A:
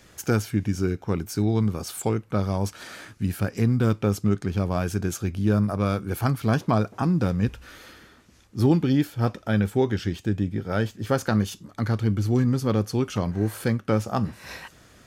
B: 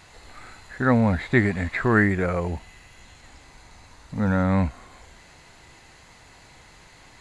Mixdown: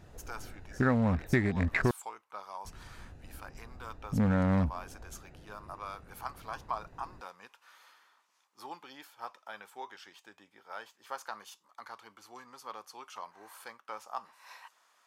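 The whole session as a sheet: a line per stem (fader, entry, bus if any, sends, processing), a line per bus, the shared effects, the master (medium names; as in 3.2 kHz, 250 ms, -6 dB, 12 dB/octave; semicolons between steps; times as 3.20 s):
-14.0 dB, 0.00 s, no send, resonant high-pass 980 Hz, resonance Q 3.4; peaking EQ 1.5 kHz -3.5 dB 0.77 oct
+2.0 dB, 0.00 s, muted 1.91–2.65 s, no send, local Wiener filter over 41 samples; compression 5:1, threshold -26 dBFS, peak gain reduction 12 dB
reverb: none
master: none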